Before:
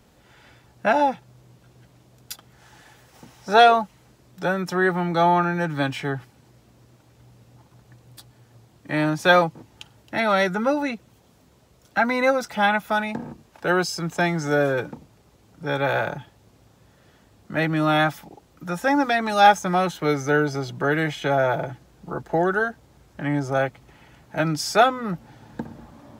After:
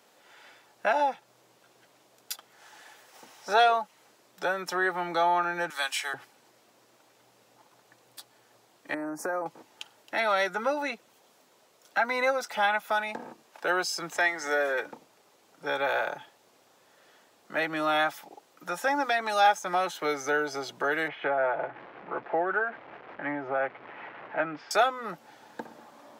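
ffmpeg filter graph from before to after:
ffmpeg -i in.wav -filter_complex "[0:a]asettb=1/sr,asplit=3[link_01][link_02][link_03];[link_01]atrim=end=5.704[link_04];[link_02]atrim=start=5.7:end=6.14,asetpts=PTS-STARTPTS,afade=type=in:duration=0.004:curve=qsin,afade=type=out:start_time=0.436:duration=0.004:curve=qsin,highpass=890,equalizer=frequency=9700:width=0.51:gain=13.5[link_05];[link_03]atrim=start=6.136[link_06];[link_04][link_05]acrossfade=duration=0.004:curve1=hsin:curve2=qsin[link_07];[link_07][link_06]acrossfade=duration=0.004:curve1=qsin:curve2=hsin,asettb=1/sr,asplit=3[link_08][link_09][link_10];[link_08]atrim=end=8.944[link_11];[link_09]atrim=start=8.94:end=9.46,asetpts=PTS-STARTPTS,afade=type=in:duration=0.004:curve=qsin,afade=type=out:start_time=0.516:duration=0.004:curve=qsin,equalizer=frequency=290:width=1.1:gain=9,acompressor=threshold=-22dB:ratio=12:attack=3.2:release=140:knee=1:detection=peak,asuperstop=centerf=3300:order=4:qfactor=0.66[link_12];[link_10]atrim=start=9.456[link_13];[link_11][link_12]acrossfade=duration=0.004:curve1=hsin:curve2=qsin[link_14];[link_14][link_13]acrossfade=duration=0.004:curve1=qsin:curve2=hsin,asettb=1/sr,asplit=3[link_15][link_16][link_17];[link_15]atrim=end=14.144[link_18];[link_16]atrim=start=14.14:end=14.86,asetpts=PTS-STARTPTS,afade=type=in:duration=0.004:curve=qsin,afade=type=out:start_time=0.716:duration=0.004:curve=qsin,highpass=310,equalizer=frequency=1900:width=6.9:gain=12.5,aeval=exprs='val(0)+0.01*(sin(2*PI*60*n/s)+sin(2*PI*2*60*n/s)/2+sin(2*PI*3*60*n/s)/3+sin(2*PI*4*60*n/s)/4+sin(2*PI*5*60*n/s)/5)':channel_layout=same[link_19];[link_17]atrim=start=14.856[link_20];[link_18][link_19]acrossfade=duration=0.004:curve1=hsin:curve2=qsin[link_21];[link_21][link_20]acrossfade=duration=0.004:curve1=qsin:curve2=hsin,asettb=1/sr,asplit=3[link_22][link_23][link_24];[link_22]atrim=end=21.084[link_25];[link_23]atrim=start=21.08:end=24.71,asetpts=PTS-STARTPTS,afade=type=in:duration=0.004:curve=qsin,afade=type=out:start_time=3.626:duration=0.004:curve=qsin,aeval=exprs='val(0)+0.5*0.02*sgn(val(0))':channel_layout=same,lowpass=frequency=2300:width=0.5412,lowpass=frequency=2300:width=1.3066,tremolo=f=5.4:d=0.28[link_26];[link_24]atrim=start=24.706[link_27];[link_25][link_26]acrossfade=duration=0.004:curve1=hsin:curve2=qsin[link_28];[link_28][link_27]acrossfade=duration=0.004:curve1=qsin:curve2=hsin,highpass=480,acompressor=threshold=-30dB:ratio=1.5" out.wav

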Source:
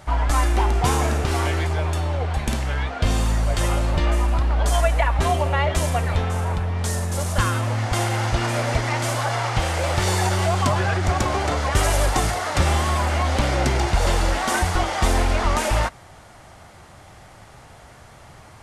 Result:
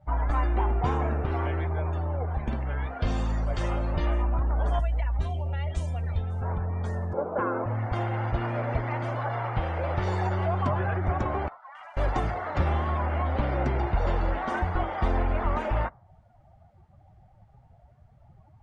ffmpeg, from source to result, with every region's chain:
ffmpeg -i in.wav -filter_complex "[0:a]asettb=1/sr,asplit=3[link_01][link_02][link_03];[link_01]atrim=end=2.864[link_04];[link_02]atrim=start=2.86:end=4.23,asetpts=PTS-STARTPTS,afade=type=in:duration=0.004:curve=qsin,afade=type=out:start_time=1.366:duration=0.004:curve=qsin,aemphasis=mode=production:type=75fm,acrossover=split=7600[link_05][link_06];[link_06]acompressor=threshold=-40dB:ratio=4:attack=1:release=60[link_07];[link_05][link_07]amix=inputs=2:normalize=0,asplit=2[link_08][link_09];[link_09]adelay=31,volume=-13dB[link_10];[link_08][link_10]amix=inputs=2:normalize=0,atrim=end_sample=60417[link_11];[link_03]atrim=start=4.226[link_12];[link_04][link_11]acrossfade=duration=0.004:curve1=hsin:curve2=qsin[link_13];[link_13][link_12]acrossfade=duration=0.004:curve1=qsin:curve2=hsin,asettb=1/sr,asplit=3[link_14][link_15][link_16];[link_14]atrim=end=4.794[link_17];[link_15]atrim=start=4.79:end=6.42,asetpts=PTS-STARTPTS,afade=type=in:duration=0.004:curve=qsin,afade=type=out:start_time=1.626:duration=0.004:curve=qsin,acrossover=split=140|3000[link_18][link_19][link_20];[link_19]acompressor=threshold=-40dB:ratio=2:attack=3.2:release=140:knee=2.83:detection=peak[link_21];[link_18][link_21][link_20]amix=inputs=3:normalize=0,equalizer=frequency=9700:width=0.38:gain=5.5,bandreject=frequency=1100:width=14[link_22];[link_16]atrim=start=6.416[link_23];[link_17][link_22]acrossfade=duration=0.004:curve1=hsin:curve2=qsin[link_24];[link_24][link_23]acrossfade=duration=0.004:curve1=qsin:curve2=hsin,asettb=1/sr,asplit=3[link_25][link_26][link_27];[link_25]atrim=end=7.134[link_28];[link_26]atrim=start=7.13:end=7.66,asetpts=PTS-STARTPTS,afade=type=in:duration=0.004:curve=qsin,afade=type=out:start_time=0.526:duration=0.004:curve=qsin,acontrast=39,acrusher=bits=5:dc=4:mix=0:aa=0.000001,highpass=310,equalizer=frequency=310:width_type=q:width=4:gain=5,equalizer=frequency=460:width_type=q:width=4:gain=8,equalizer=frequency=1200:width_type=q:width=4:gain=-4,equalizer=frequency=1800:width_type=q:width=4:gain=-10,lowpass=frequency=2000:width=0.5412,lowpass=frequency=2000:width=1.3066[link_29];[link_27]atrim=start=7.656[link_30];[link_28][link_29]acrossfade=duration=0.004:curve1=hsin:curve2=qsin[link_31];[link_31][link_30]acrossfade=duration=0.004:curve1=qsin:curve2=hsin,asettb=1/sr,asplit=3[link_32][link_33][link_34];[link_32]atrim=end=11.484[link_35];[link_33]atrim=start=11.48:end=11.97,asetpts=PTS-STARTPTS,afade=type=in:duration=0.004:curve=qsin,afade=type=out:start_time=0.486:duration=0.004:curve=qsin,highpass=frequency=870:width=0.5412,highpass=frequency=870:width=1.3066,equalizer=frequency=1400:width=0.32:gain=-10,adynamicsmooth=sensitivity=7:basefreq=1400[link_36];[link_34]atrim=start=11.966[link_37];[link_35][link_36]acrossfade=duration=0.004:curve1=hsin:curve2=qsin[link_38];[link_38][link_37]acrossfade=duration=0.004:curve1=qsin:curve2=hsin,aemphasis=mode=reproduction:type=75kf,afftdn=noise_reduction=20:noise_floor=-38,adynamicequalizer=threshold=0.00891:dfrequency=2100:dqfactor=0.7:tfrequency=2100:tqfactor=0.7:attack=5:release=100:ratio=0.375:range=2.5:mode=cutabove:tftype=highshelf,volume=-5.5dB" out.wav

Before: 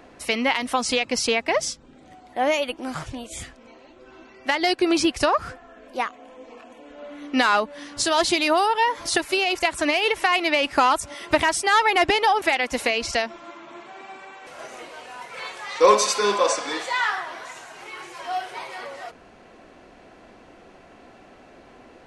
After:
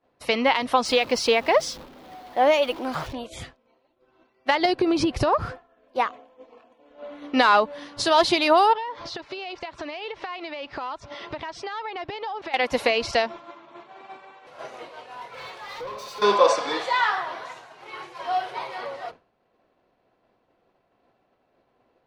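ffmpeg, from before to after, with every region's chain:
ffmpeg -i in.wav -filter_complex "[0:a]asettb=1/sr,asplit=3[link_01][link_02][link_03];[link_01]atrim=end=0.854[link_04];[link_02]atrim=start=0.85:end=3.13,asetpts=PTS-STARTPTS,afade=type=in:duration=0.004:curve=qsin,afade=type=out:start_time=2.276:duration=0.004:curve=qsin,aeval=exprs='val(0)+0.5*0.015*sgn(val(0))':channel_layout=same,equalizer=frequency=120:width=1.6:gain=-9[link_05];[link_03]atrim=start=3.126[link_06];[link_04][link_05]acrossfade=duration=0.004:curve1=hsin:curve2=qsin[link_07];[link_07][link_06]acrossfade=duration=0.004:curve1=qsin:curve2=hsin,asettb=1/sr,asplit=3[link_08][link_09][link_10];[link_08]atrim=end=4.654[link_11];[link_09]atrim=start=4.65:end=5.46,asetpts=PTS-STARTPTS,afade=type=in:duration=0.004:curve=qsin,afade=type=out:start_time=0.806:duration=0.004:curve=qsin,lowshelf=frequency=430:gain=10.5,acompressor=threshold=-18dB:ratio=10:attack=3.2:release=140:knee=1:detection=peak[link_12];[link_10]atrim=start=5.456[link_13];[link_11][link_12]acrossfade=duration=0.004:curve1=hsin:curve2=qsin[link_14];[link_14][link_13]acrossfade=duration=0.004:curve1=qsin:curve2=hsin,asettb=1/sr,asplit=3[link_15][link_16][link_17];[link_15]atrim=end=8.734[link_18];[link_16]atrim=start=8.73:end=12.54,asetpts=PTS-STARTPTS,afade=type=in:duration=0.004:curve=qsin,afade=type=out:start_time=3.806:duration=0.004:curve=qsin,lowpass=frequency=5800:width=0.5412,lowpass=frequency=5800:width=1.3066,acompressor=threshold=-31dB:ratio=10:attack=3.2:release=140:knee=1:detection=peak[link_19];[link_17]atrim=start=12.536[link_20];[link_18][link_19]acrossfade=duration=0.004:curve1=hsin:curve2=qsin[link_21];[link_21][link_20]acrossfade=duration=0.004:curve1=qsin:curve2=hsin,asettb=1/sr,asplit=3[link_22][link_23][link_24];[link_22]atrim=end=15.144[link_25];[link_23]atrim=start=15.14:end=16.22,asetpts=PTS-STARTPTS,afade=type=in:duration=0.004:curve=qsin,afade=type=out:start_time=1.076:duration=0.004:curve=qsin,acompressor=threshold=-28dB:ratio=10:attack=3.2:release=140:knee=1:detection=peak,volume=34.5dB,asoftclip=hard,volume=-34.5dB,asplit=2[link_26][link_27];[link_27]adelay=23,volume=-12dB[link_28];[link_26][link_28]amix=inputs=2:normalize=0,atrim=end_sample=47628[link_29];[link_24]atrim=start=16.216[link_30];[link_25][link_29]acrossfade=duration=0.004:curve1=hsin:curve2=qsin[link_31];[link_31][link_30]acrossfade=duration=0.004:curve1=qsin:curve2=hsin,agate=range=-33dB:threshold=-35dB:ratio=3:detection=peak,equalizer=frequency=125:width_type=o:width=1:gain=8,equalizer=frequency=500:width_type=o:width=1:gain=6,equalizer=frequency=1000:width_type=o:width=1:gain=6,equalizer=frequency=4000:width_type=o:width=1:gain=6,equalizer=frequency=8000:width_type=o:width=1:gain=-8,volume=-3.5dB" out.wav

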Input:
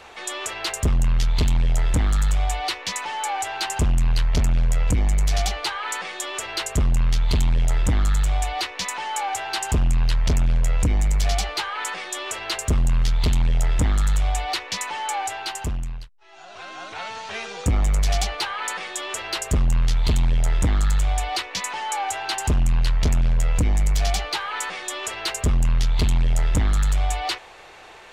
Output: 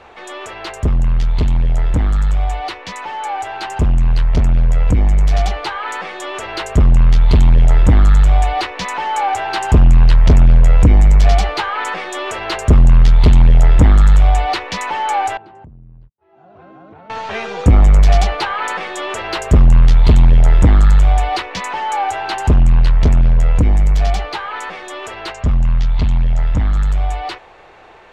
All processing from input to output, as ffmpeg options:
ffmpeg -i in.wav -filter_complex "[0:a]asettb=1/sr,asplit=3[link_01][link_02][link_03];[link_01]atrim=end=15.374[link_04];[link_02]atrim=start=15.37:end=17.1,asetpts=PTS-STARTPTS,afade=type=in:duration=0.004:curve=qsin,afade=type=out:start_time=1.726:duration=0.004:curve=qsin,bandpass=frequency=160:width_type=q:width=0.91,acompressor=threshold=-46dB:ratio=16:attack=3.2:release=140:knee=1:detection=peak[link_05];[link_03]atrim=start=17.096[link_06];[link_04][link_05]acrossfade=duration=0.004:curve1=hsin:curve2=qsin[link_07];[link_07][link_06]acrossfade=duration=0.004:curve1=qsin:curve2=hsin,asettb=1/sr,asplit=3[link_08][link_09][link_10];[link_08]atrim=end=25.324[link_11];[link_09]atrim=start=25.32:end=26.75,asetpts=PTS-STARTPTS,afade=type=in:duration=0.004:curve=qsin,afade=type=out:start_time=1.426:duration=0.004:curve=qsin,lowpass=frequency=7100:width=0.5412,lowpass=frequency=7100:width=1.3066,equalizer=frequency=390:width_type=o:width=0.69:gain=-7.5[link_12];[link_10]atrim=start=26.746[link_13];[link_11][link_12]acrossfade=duration=0.004:curve1=hsin:curve2=qsin[link_14];[link_14][link_13]acrossfade=duration=0.004:curve1=qsin:curve2=hsin,lowpass=frequency=1300:poles=1,dynaudnorm=framelen=940:gausssize=13:maxgain=6.5dB,volume=5dB" out.wav

